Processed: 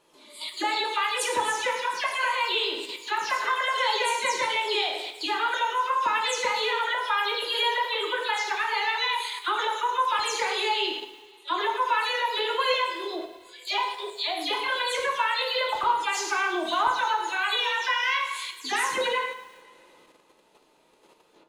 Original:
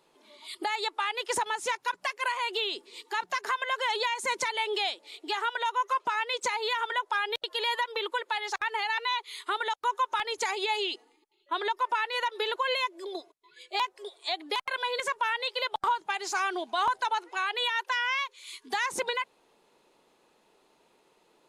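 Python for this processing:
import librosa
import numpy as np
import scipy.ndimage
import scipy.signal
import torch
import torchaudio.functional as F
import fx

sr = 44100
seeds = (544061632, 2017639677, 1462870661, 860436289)

p1 = fx.spec_delay(x, sr, highs='early', ms=143)
p2 = fx.rev_double_slope(p1, sr, seeds[0], early_s=0.68, late_s=2.3, knee_db=-18, drr_db=1.0)
p3 = fx.level_steps(p2, sr, step_db=21)
p4 = p2 + (p3 * 10.0 ** (1.0 / 20.0))
y = fx.echo_crushed(p4, sr, ms=108, feedback_pct=35, bits=8, wet_db=-14.0)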